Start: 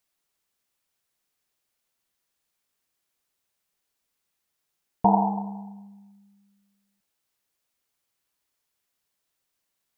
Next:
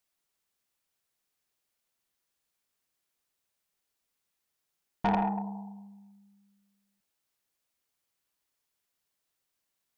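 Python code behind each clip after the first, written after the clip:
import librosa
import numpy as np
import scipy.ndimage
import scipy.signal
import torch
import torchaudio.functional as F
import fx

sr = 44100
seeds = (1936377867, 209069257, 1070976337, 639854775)

y = 10.0 ** (-18.5 / 20.0) * np.tanh(x / 10.0 ** (-18.5 / 20.0))
y = y * librosa.db_to_amplitude(-3.0)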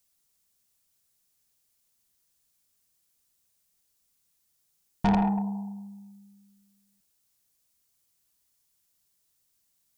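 y = fx.bass_treble(x, sr, bass_db=10, treble_db=11)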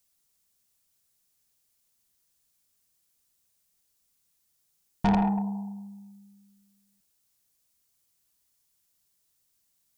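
y = x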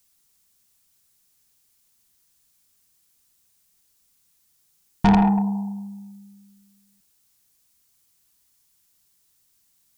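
y = fx.peak_eq(x, sr, hz=570.0, db=-13.0, octaves=0.25)
y = y * librosa.db_to_amplitude(7.5)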